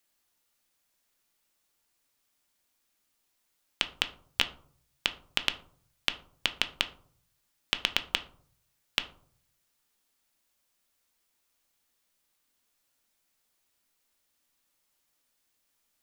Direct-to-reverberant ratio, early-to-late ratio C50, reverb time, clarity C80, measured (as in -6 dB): 8.5 dB, 15.0 dB, 0.55 s, 19.5 dB